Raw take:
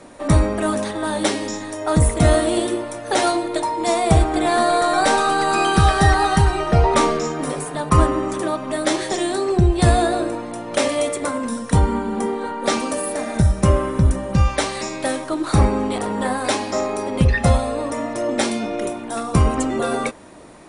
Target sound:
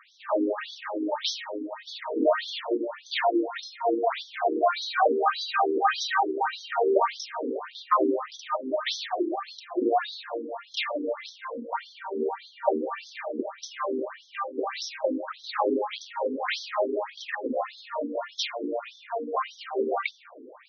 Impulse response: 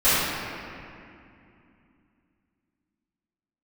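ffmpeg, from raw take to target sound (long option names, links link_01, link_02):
-filter_complex "[0:a]bandreject=frequency=50:width_type=h:width=6,bandreject=frequency=100:width_type=h:width=6,bandreject=frequency=150:width_type=h:width=6,bandreject=frequency=200:width_type=h:width=6,bandreject=frequency=250:width_type=h:width=6,bandreject=frequency=300:width_type=h:width=6,bandreject=frequency=350:width_type=h:width=6,bandreject=frequency=400:width_type=h:width=6,asplit=2[link_01][link_02];[1:a]atrim=start_sample=2205[link_03];[link_02][link_03]afir=irnorm=-1:irlink=0,volume=-37dB[link_04];[link_01][link_04]amix=inputs=2:normalize=0,afftfilt=real='re*between(b*sr/1024,330*pow(4600/330,0.5+0.5*sin(2*PI*1.7*pts/sr))/1.41,330*pow(4600/330,0.5+0.5*sin(2*PI*1.7*pts/sr))*1.41)':imag='im*between(b*sr/1024,330*pow(4600/330,0.5+0.5*sin(2*PI*1.7*pts/sr))/1.41,330*pow(4600/330,0.5+0.5*sin(2*PI*1.7*pts/sr))*1.41)':win_size=1024:overlap=0.75"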